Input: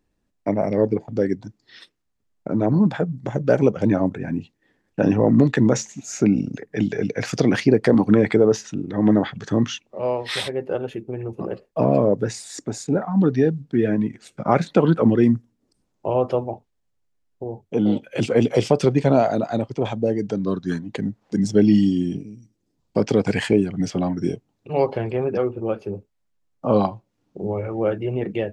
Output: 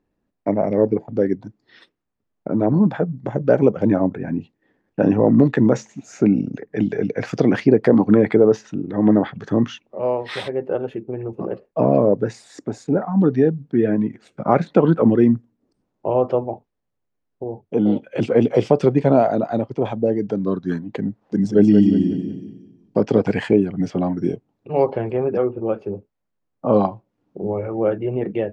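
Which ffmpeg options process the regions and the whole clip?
ffmpeg -i in.wav -filter_complex "[0:a]asettb=1/sr,asplit=3[link_01][link_02][link_03];[link_01]atrim=end=21.224[link_04];[link_02]atrim=start=21.22:end=23.27,asetpts=PTS-STARTPTS,afade=type=in:duration=0.004:curve=qsin,afade=type=out:start_time=2.046:duration=0.004:curve=qsin,bandreject=frequency=2200:width=16,aecho=1:1:182|364|546|728:0.473|0.175|0.0648|0.024,atrim=end_sample=90405[link_05];[link_03]atrim=start=23.266[link_06];[link_04][link_05]acrossfade=duration=0.004:curve1=hsin:curve2=qsin[link_07];[link_07][link_06]acrossfade=duration=0.004:curve1=qsin:curve2=hsin,lowpass=frequency=1200:poles=1,lowshelf=frequency=100:gain=-10,volume=3.5dB" out.wav

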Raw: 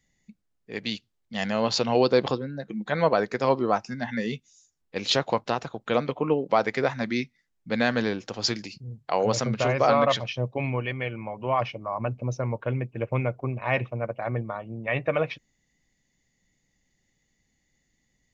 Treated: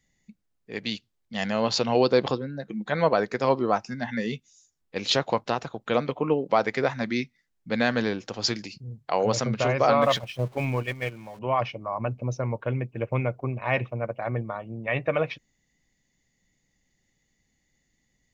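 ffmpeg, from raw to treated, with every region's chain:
ffmpeg -i in.wav -filter_complex "[0:a]asettb=1/sr,asplit=3[link_01][link_02][link_03];[link_01]atrim=end=10.024[link_04];[link_02]atrim=start=10.02:end=11.39,asetpts=PTS-STARTPTS,afade=type=in:duration=0.004:curve=qsin,afade=type=out:start_time=1.366:duration=0.004:curve=qsin,aeval=exprs='val(0)+0.5*0.0126*sgn(val(0))':channel_layout=same,agate=range=-9dB:threshold=-30dB:ratio=16:release=100:detection=peak[link_05];[link_03]atrim=start=11.386[link_06];[link_04][link_05]acrossfade=duration=0.004:curve1=hsin:curve2=qsin[link_07];[link_07][link_06]acrossfade=duration=0.004:curve1=qsin:curve2=hsin" out.wav

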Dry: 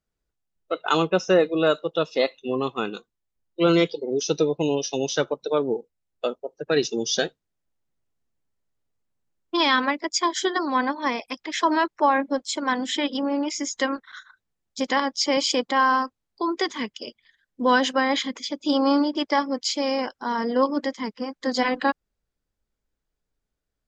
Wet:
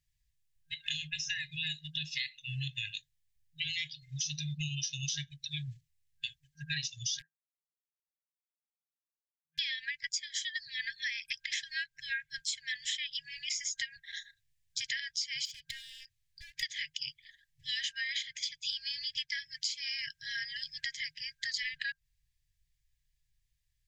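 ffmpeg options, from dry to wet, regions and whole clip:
ffmpeg -i in.wav -filter_complex "[0:a]asettb=1/sr,asplit=3[link_01][link_02][link_03];[link_01]atrim=end=7.194[link_04];[link_02]atrim=start=7.19:end=9.59,asetpts=PTS-STARTPTS,afade=type=in:duration=0.004:curve=qsin,afade=type=out:start_time=2.396:duration=0.004:curve=qsin,asuperpass=centerf=640:order=12:qfactor=0.73,aeval=exprs='0.141*(abs(mod(val(0)/0.141+3,4)-2)-1)':channel_layout=same[link_05];[link_03]atrim=start=9.586[link_06];[link_04][link_05]acrossfade=duration=0.004:curve1=hsin:curve2=qsin[link_07];[link_07][link_06]acrossfade=duration=0.004:curve1=qsin:curve2=hsin,asettb=1/sr,asplit=3[link_08][link_09][link_10];[link_08]atrim=end=15.454[link_11];[link_09]atrim=start=15.45:end=16.63,asetpts=PTS-STARTPTS,afade=type=in:duration=0.004:curve=qsin,afade=type=out:start_time=1.176:duration=0.004:curve=qsin,acompressor=threshold=-34dB:ratio=5:attack=3.2:release=140:knee=1:detection=peak,volume=33dB,asoftclip=hard,volume=-33dB[link_12];[link_10]atrim=start=16.626[link_13];[link_11][link_12]acrossfade=duration=0.004:curve1=hsin:curve2=qsin[link_14];[link_14][link_13]acrossfade=duration=0.004:curve1=qsin:curve2=hsin,afftfilt=real='re*(1-between(b*sr/4096,160,1600))':imag='im*(1-between(b*sr/4096,160,1600))':win_size=4096:overlap=0.75,equalizer=frequency=1600:width=1.5:gain=-2.5,acompressor=threshold=-37dB:ratio=12,volume=4.5dB" out.wav

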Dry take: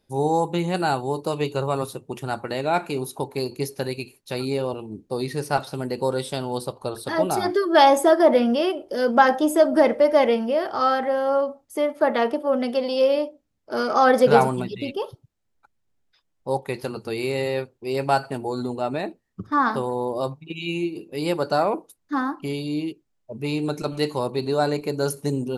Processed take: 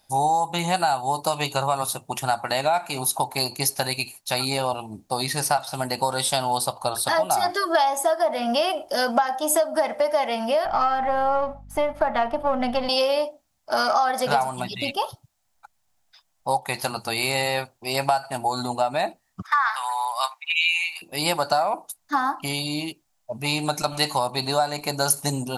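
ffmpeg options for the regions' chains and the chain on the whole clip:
ffmpeg -i in.wav -filter_complex "[0:a]asettb=1/sr,asplit=3[link_01][link_02][link_03];[link_01]atrim=end=10.654[link_04];[link_02]atrim=start=10.65:end=12.89,asetpts=PTS-STARTPTS,afade=type=in:duration=0.004:curve=qsin,afade=type=out:start_time=2.236:duration=0.004:curve=qsin,aeval=exprs='if(lt(val(0),0),0.708*val(0),val(0))':channel_layout=same,bass=frequency=250:gain=9,treble=frequency=4000:gain=-13,aeval=exprs='val(0)+0.00708*(sin(2*PI*50*n/s)+sin(2*PI*2*50*n/s)/2+sin(2*PI*3*50*n/s)/3+sin(2*PI*4*50*n/s)/4+sin(2*PI*5*50*n/s)/5)':channel_layout=same[link_05];[link_03]atrim=start=12.886[link_06];[link_04][link_05]acrossfade=duration=0.004:curve1=hsin:curve2=qsin[link_07];[link_07][link_06]acrossfade=duration=0.004:curve1=qsin:curve2=hsin,asettb=1/sr,asplit=3[link_08][link_09][link_10];[link_08]atrim=end=19.424[link_11];[link_09]atrim=start=19.42:end=21.02,asetpts=PTS-STARTPTS,afade=type=in:duration=0.004:curve=qsin,afade=type=out:start_time=1.596:duration=0.004:curve=qsin,highpass=frequency=990:width=0.5412,highpass=frequency=990:width=1.3066,equalizer=frequency=2100:width_type=o:width=1:gain=12.5[link_12];[link_10]atrim=start=21.016[link_13];[link_11][link_12]acrossfade=duration=0.004:curve1=hsin:curve2=qsin[link_14];[link_14][link_13]acrossfade=duration=0.004:curve1=qsin:curve2=hsin,lowshelf=frequency=560:width_type=q:width=3:gain=-8,acompressor=threshold=-25dB:ratio=8,bass=frequency=250:gain=2,treble=frequency=4000:gain=8,volume=6.5dB" out.wav

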